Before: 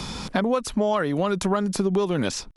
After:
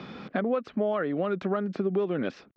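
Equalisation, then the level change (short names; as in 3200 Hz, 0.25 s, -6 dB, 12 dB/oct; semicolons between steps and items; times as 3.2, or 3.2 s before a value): BPF 210–2300 Hz; air absorption 140 m; bell 940 Hz -13 dB 0.3 oct; -2.5 dB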